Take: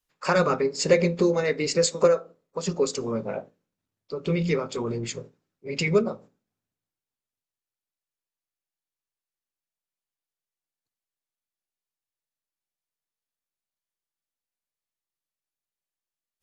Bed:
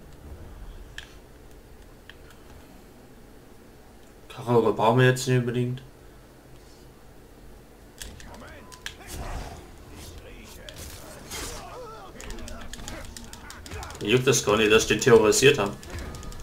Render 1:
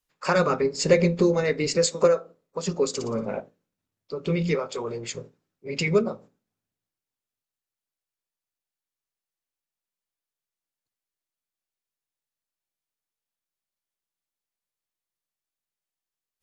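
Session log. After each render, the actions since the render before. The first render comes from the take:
0:00.61–0:01.77: low-shelf EQ 120 Hz +9 dB
0:02.88–0:03.40: flutter between parallel walls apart 10 metres, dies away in 0.45 s
0:04.55–0:05.15: low shelf with overshoot 370 Hz −7 dB, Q 1.5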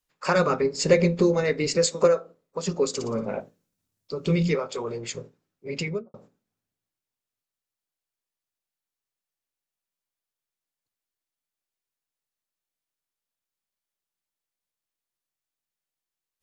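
0:03.40–0:04.48: bass and treble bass +4 dB, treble +8 dB
0:05.68–0:06.14: fade out and dull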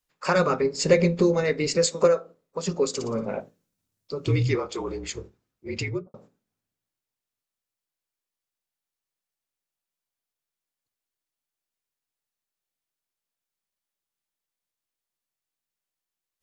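0:04.27–0:06.07: frequency shifter −49 Hz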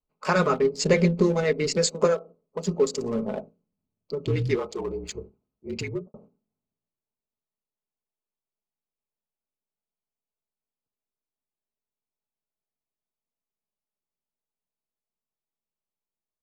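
adaptive Wiener filter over 25 samples
comb filter 4.7 ms, depth 40%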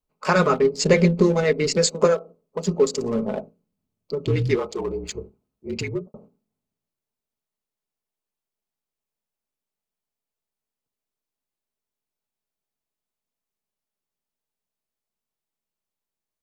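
level +3.5 dB

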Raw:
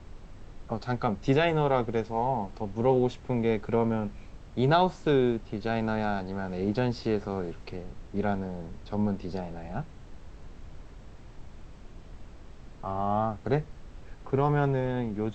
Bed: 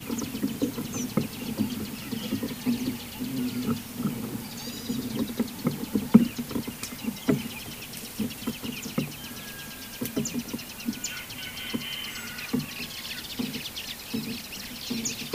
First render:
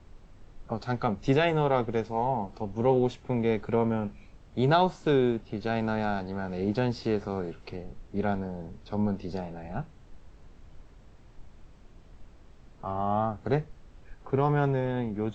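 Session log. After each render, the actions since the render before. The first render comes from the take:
noise reduction from a noise print 6 dB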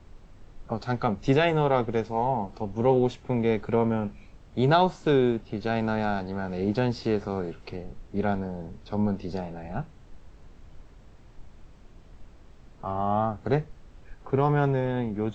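level +2 dB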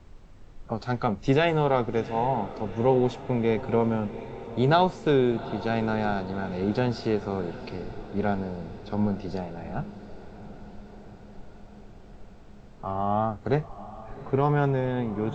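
feedback delay with all-pass diffusion 769 ms, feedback 66%, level −15.5 dB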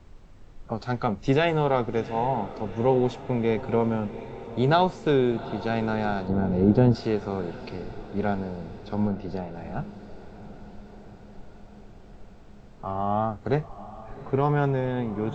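0:06.28–0:06.95: tilt shelving filter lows +9 dB, about 910 Hz
0:09.07–0:09.53: low-pass filter 2,400 Hz → 4,100 Hz 6 dB per octave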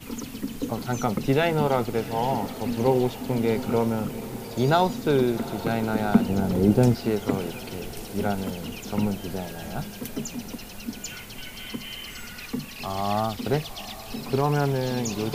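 mix in bed −3 dB

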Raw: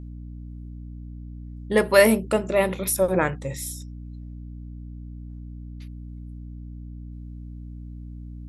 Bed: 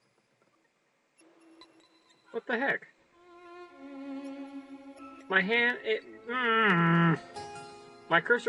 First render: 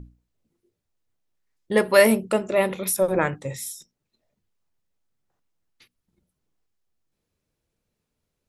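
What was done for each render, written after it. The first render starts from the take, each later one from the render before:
mains-hum notches 60/120/180/240/300 Hz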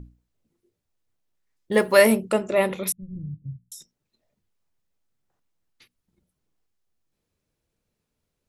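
0:01.72–0:02.17: one scale factor per block 7 bits
0:02.92–0:03.72: inverse Chebyshev low-pass filter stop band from 770 Hz, stop band 70 dB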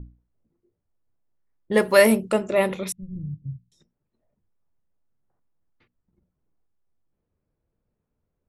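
low-pass that shuts in the quiet parts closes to 1,300 Hz, open at −19.5 dBFS
low-shelf EQ 130 Hz +4 dB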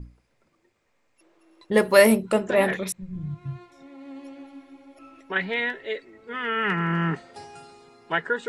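mix in bed −0.5 dB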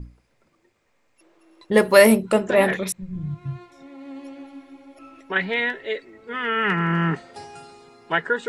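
level +3 dB
brickwall limiter −1 dBFS, peak gain reduction 1 dB

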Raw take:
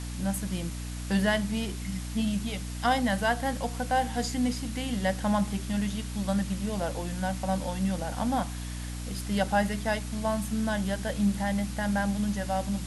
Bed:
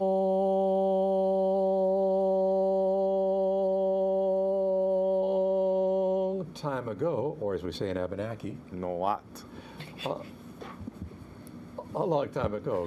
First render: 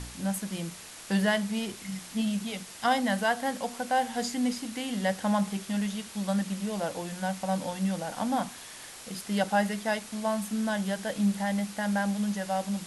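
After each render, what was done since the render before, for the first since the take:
hum removal 60 Hz, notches 5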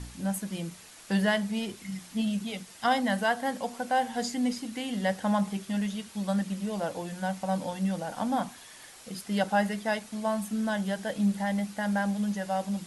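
broadband denoise 6 dB, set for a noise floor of −45 dBFS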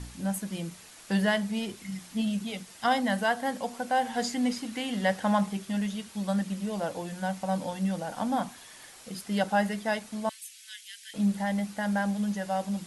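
0:04.05–0:05.46: parametric band 1,600 Hz +3.5 dB 3 octaves
0:10.29–0:11.14: Butterworth high-pass 2,100 Hz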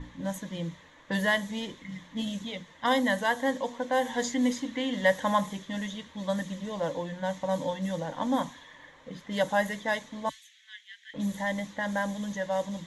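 low-pass that shuts in the quiet parts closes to 1,800 Hz, open at −22 dBFS
EQ curve with evenly spaced ripples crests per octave 1.1, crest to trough 11 dB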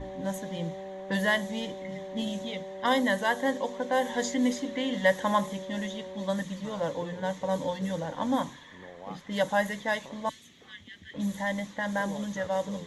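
mix in bed −14.5 dB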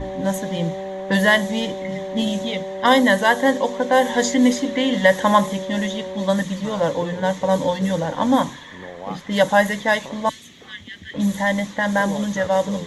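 level +10.5 dB
brickwall limiter −3 dBFS, peak gain reduction 3 dB

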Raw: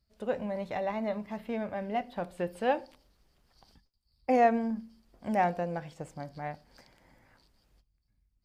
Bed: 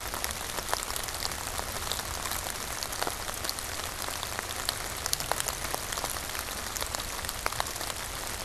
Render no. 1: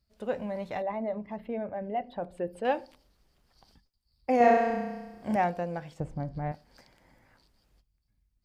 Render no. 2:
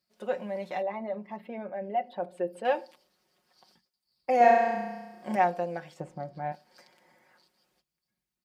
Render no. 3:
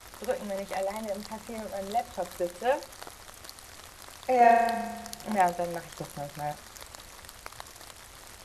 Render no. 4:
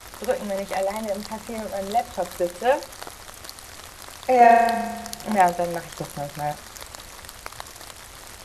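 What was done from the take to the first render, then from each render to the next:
0:00.82–0:02.65: spectral envelope exaggerated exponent 1.5; 0:04.37–0:05.36: flutter between parallel walls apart 5.7 metres, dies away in 1.2 s; 0:06.00–0:06.52: spectral tilt −3.5 dB per octave
Bessel high-pass filter 320 Hz, order 2; comb filter 5.5 ms
mix in bed −12.5 dB
level +6.5 dB; brickwall limiter −3 dBFS, peak gain reduction 2 dB

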